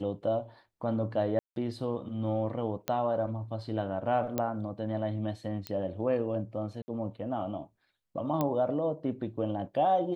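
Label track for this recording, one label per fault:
1.390000	1.560000	gap 0.172 s
2.880000	2.880000	pop -15 dBFS
4.380000	4.380000	pop -16 dBFS
5.670000	5.670000	pop -20 dBFS
6.820000	6.880000	gap 60 ms
8.410000	8.410000	pop -16 dBFS

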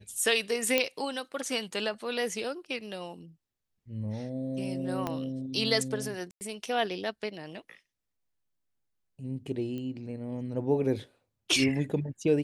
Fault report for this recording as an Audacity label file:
0.780000	0.780000	pop -9 dBFS
5.070000	5.070000	pop -17 dBFS
6.310000	6.410000	gap 99 ms
9.780000	9.780000	pop -27 dBFS

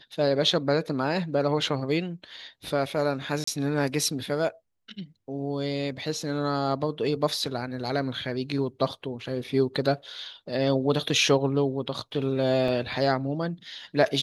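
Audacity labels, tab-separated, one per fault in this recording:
3.440000	3.470000	gap 34 ms
9.440000	9.440000	gap 3.1 ms
12.680000	12.680000	gap 3.2 ms

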